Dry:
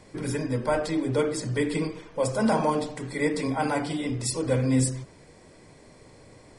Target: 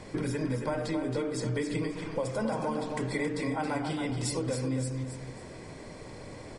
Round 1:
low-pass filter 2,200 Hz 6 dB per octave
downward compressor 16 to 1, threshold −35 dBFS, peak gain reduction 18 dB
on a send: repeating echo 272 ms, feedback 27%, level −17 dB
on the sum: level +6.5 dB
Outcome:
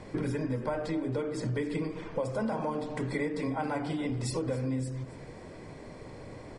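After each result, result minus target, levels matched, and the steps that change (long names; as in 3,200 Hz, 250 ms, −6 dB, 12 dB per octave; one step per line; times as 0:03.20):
echo-to-direct −10 dB; 8,000 Hz band −5.5 dB
change: repeating echo 272 ms, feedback 27%, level −7 dB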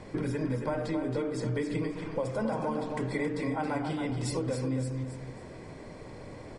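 8,000 Hz band −5.5 dB
change: low-pass filter 6,100 Hz 6 dB per octave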